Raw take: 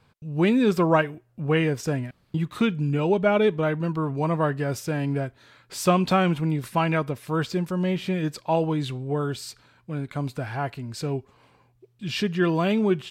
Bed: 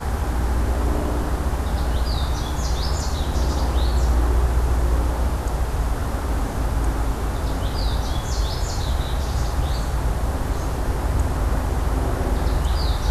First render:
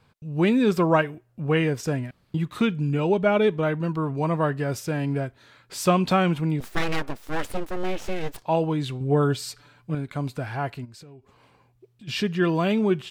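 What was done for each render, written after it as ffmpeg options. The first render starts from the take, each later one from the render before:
-filter_complex "[0:a]asettb=1/sr,asplit=3[a][b][c];[a]atrim=end=6.604[d];[b]atrim=start=6.6:end=8.43,asetpts=PTS-STARTPTS,afade=t=in:d=0.004:c=qsin,afade=t=out:st=1.826:d=0.004:c=qsin,aeval=exprs='abs(val(0))':c=same[e];[c]atrim=start=8.426[f];[d][e]acrossfade=d=0.004:c1=hsin:c2=qsin[g];[g][f]acrossfade=d=0.004:c1=qsin:c2=hsin,asettb=1/sr,asplit=3[h][i][j];[h]atrim=end=9.004[k];[i]atrim=start=9:end=9.95,asetpts=PTS-STARTPTS,afade=t=in:d=0.004:c=qsin,afade=t=out:st=0.946:d=0.004:c=qsin,aecho=1:1:6.9:0.98,atrim=end_sample=41895[l];[j]atrim=start=9.946[m];[k][l]acrossfade=d=0.004:c1=hsin:c2=qsin[n];[n][m]acrossfade=d=0.004:c1=qsin:c2=hsin,asplit=3[o][p][q];[o]afade=t=out:st=10.84:d=0.02[r];[p]acompressor=threshold=-43dB:ratio=10:attack=3.2:release=140:knee=1:detection=peak,afade=t=in:st=10.84:d=0.02,afade=t=out:st=12.07:d=0.02[s];[q]afade=t=in:st=12.07:d=0.02[t];[r][s][t]amix=inputs=3:normalize=0"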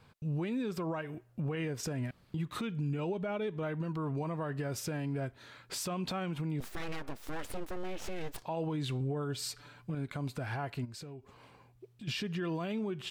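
-af "acompressor=threshold=-23dB:ratio=6,alimiter=level_in=4dB:limit=-24dB:level=0:latency=1:release=170,volume=-4dB"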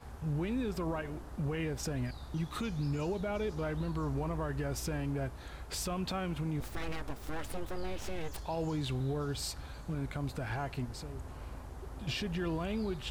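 -filter_complex "[1:a]volume=-23.5dB[a];[0:a][a]amix=inputs=2:normalize=0"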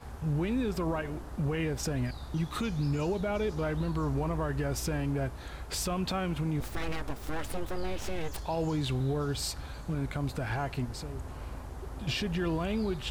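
-af "volume=4dB"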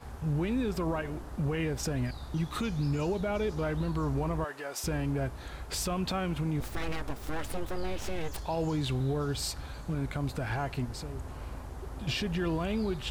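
-filter_complex "[0:a]asettb=1/sr,asplit=3[a][b][c];[a]atrim=end=4.444[d];[b]atrim=start=4.44:end=4.84,asetpts=PTS-STARTPTS,afade=t=in:d=0.004:c=qsin,afade=t=out:st=0.396:d=0.004:c=qsin,highpass=580[e];[c]atrim=start=4.836[f];[d][e]acrossfade=d=0.004:c1=hsin:c2=qsin[g];[g][f]acrossfade=d=0.004:c1=qsin:c2=hsin"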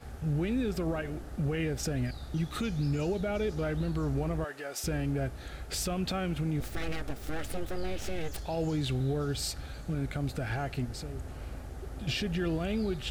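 -af "equalizer=f=1k:w=5.4:g=-13.5"

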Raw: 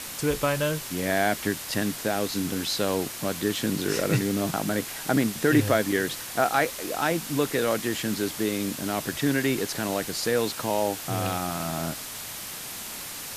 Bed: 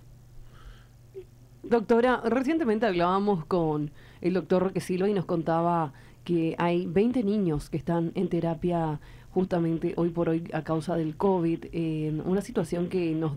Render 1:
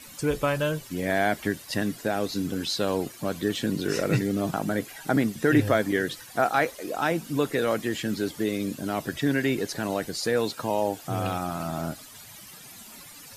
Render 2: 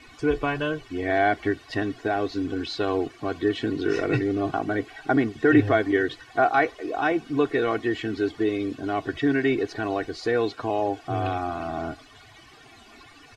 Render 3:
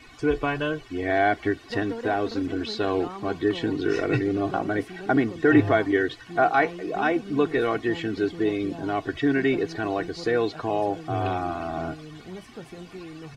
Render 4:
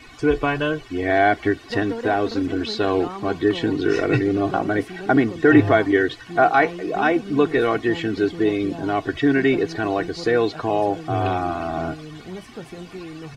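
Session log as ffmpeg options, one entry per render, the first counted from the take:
-af "afftdn=nr=14:nf=-37"
-af "lowpass=3k,aecho=1:1:2.7:0.84"
-filter_complex "[1:a]volume=-13dB[a];[0:a][a]amix=inputs=2:normalize=0"
-af "volume=4.5dB,alimiter=limit=-3dB:level=0:latency=1"

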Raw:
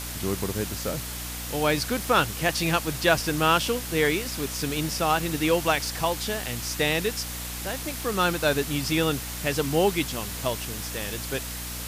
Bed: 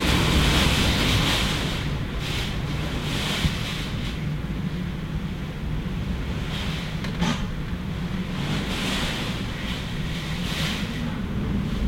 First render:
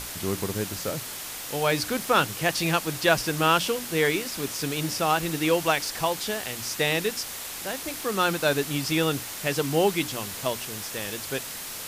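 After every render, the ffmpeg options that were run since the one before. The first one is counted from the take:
-af "bandreject=f=60:t=h:w=6,bandreject=f=120:t=h:w=6,bandreject=f=180:t=h:w=6,bandreject=f=240:t=h:w=6,bandreject=f=300:t=h:w=6"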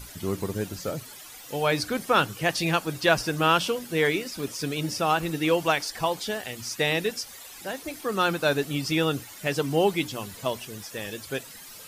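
-af "afftdn=nr=13:nf=-37"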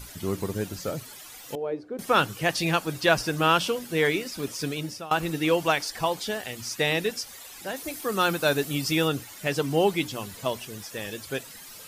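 -filter_complex "[0:a]asettb=1/sr,asplit=3[a][b][c];[a]atrim=end=1.554[d];[b]atrim=start=1.55:end=1.99,asetpts=PTS-STARTPTS,afade=t=in:d=0.004:c=qsin,afade=t=out:st=0.436:d=0.004:c=qsin,bandpass=f=400:t=q:w=2.6[e];[c]atrim=start=1.986[f];[d][e]acrossfade=d=0.004:c1=hsin:c2=qsin[g];[g][f]acrossfade=d=0.004:c1=qsin:c2=hsin,asettb=1/sr,asplit=3[h][i][j];[h]atrim=end=7.764[k];[i]atrim=start=7.76:end=9.08,asetpts=PTS-STARTPTS,afade=t=in:d=0.004:c=qsin,afade=t=out:st=1.316:d=0.004:c=qsin,highshelf=f=7.3k:g=7.5[l];[j]atrim=start=9.076[m];[k][l]acrossfade=d=0.004:c1=hsin:c2=qsin[n];[n][m]acrossfade=d=0.004:c1=qsin:c2=hsin,asplit=2[o][p];[o]atrim=end=5.11,asetpts=PTS-STARTPTS,afade=t=out:st=4.67:d=0.44:silence=0.1[q];[p]atrim=start=5.11,asetpts=PTS-STARTPTS,afade=t=in:d=0.004:c=hsin:silence=0.1[r];[q][r]concat=n=2:v=0:a=1"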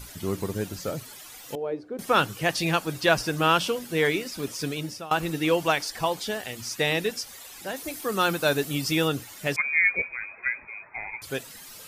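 -filter_complex "[0:a]asettb=1/sr,asplit=3[a][b][c];[a]atrim=end=9.564[d];[b]atrim=start=9.56:end=11.22,asetpts=PTS-STARTPTS,afade=t=in:d=0.004:c=qsin,afade=t=out:st=1.656:d=0.004:c=qsin,lowpass=f=2.2k:t=q:w=0.5098,lowpass=f=2.2k:t=q:w=0.6013,lowpass=f=2.2k:t=q:w=0.9,lowpass=f=2.2k:t=q:w=2.563,afreqshift=-2600[e];[c]atrim=start=11.216[f];[d][e]acrossfade=d=0.004:c1=hsin:c2=qsin[g];[g][f]acrossfade=d=0.004:c1=qsin:c2=hsin"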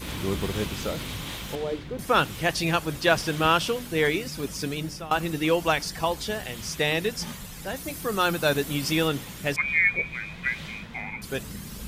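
-filter_complex "[1:a]volume=-14dB[a];[0:a][a]amix=inputs=2:normalize=0"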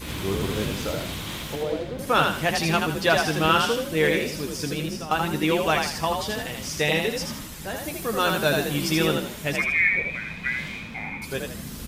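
-filter_complex "[0:a]asplit=2[a][b];[b]adelay=13,volume=-10.5dB[c];[a][c]amix=inputs=2:normalize=0,asplit=2[d][e];[e]asplit=4[f][g][h][i];[f]adelay=80,afreqshift=44,volume=-4dB[j];[g]adelay=160,afreqshift=88,volume=-13.1dB[k];[h]adelay=240,afreqshift=132,volume=-22.2dB[l];[i]adelay=320,afreqshift=176,volume=-31.4dB[m];[j][k][l][m]amix=inputs=4:normalize=0[n];[d][n]amix=inputs=2:normalize=0"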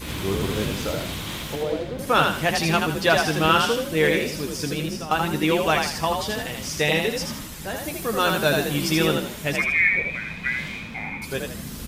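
-af "volume=1.5dB"

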